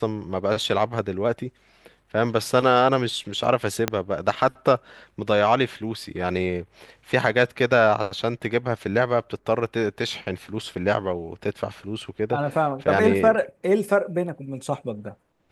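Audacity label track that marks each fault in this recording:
3.880000	3.880000	pop -6 dBFS

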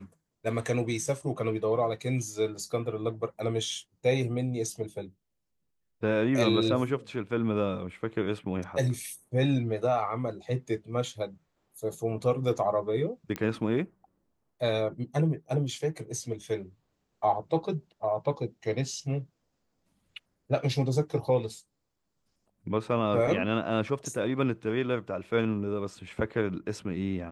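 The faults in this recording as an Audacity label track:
13.360000	13.360000	pop -17 dBFS

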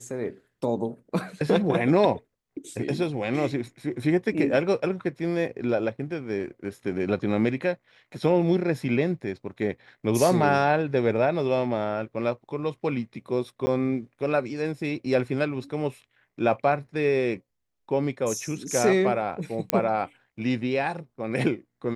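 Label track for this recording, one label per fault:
13.660000	13.670000	gap 10 ms
19.700000	19.700000	pop -5 dBFS

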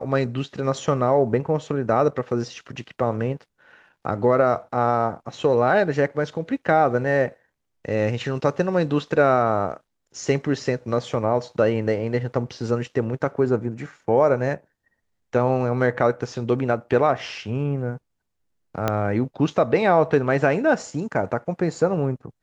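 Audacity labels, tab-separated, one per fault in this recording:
18.880000	18.880000	pop -8 dBFS

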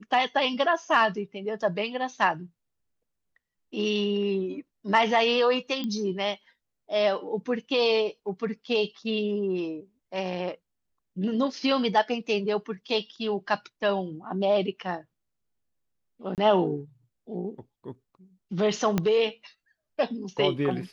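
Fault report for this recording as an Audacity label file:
5.840000	5.840000	pop -20 dBFS
16.350000	16.380000	gap 28 ms
18.980000	18.980000	pop -11 dBFS

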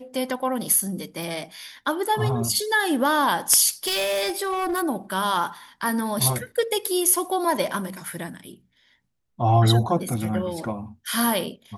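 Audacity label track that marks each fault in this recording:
1.230000	1.230000	pop
3.840000	4.840000	clipped -21 dBFS
6.570000	6.580000	gap 6.2 ms

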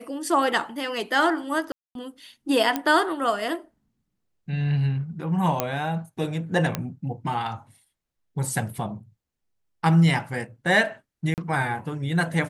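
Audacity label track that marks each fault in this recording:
1.720000	1.950000	gap 0.232 s
2.760000	2.760000	pop -10 dBFS
5.600000	5.600000	pop -7 dBFS
6.750000	6.750000	pop -10 dBFS
11.340000	11.380000	gap 38 ms

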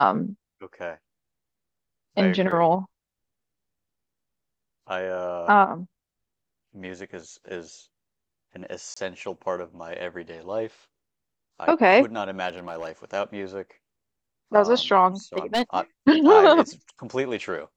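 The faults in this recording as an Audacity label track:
2.510000	2.510000	gap 4.3 ms
8.940000	8.960000	gap 25 ms
12.490000	12.890000	clipped -26.5 dBFS
15.360000	15.620000	clipped -17 dBFS

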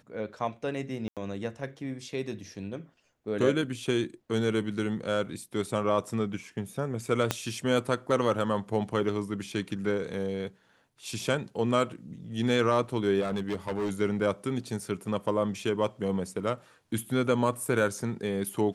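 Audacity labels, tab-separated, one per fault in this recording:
1.080000	1.170000	gap 87 ms
7.310000	7.310000	pop -10 dBFS
13.200000	13.910000	clipped -26 dBFS

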